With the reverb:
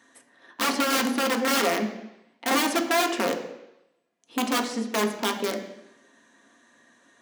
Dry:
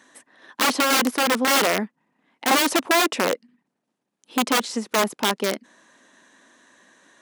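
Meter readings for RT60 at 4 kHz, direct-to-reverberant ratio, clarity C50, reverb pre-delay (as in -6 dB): 0.90 s, 2.5 dB, 9.0 dB, 3 ms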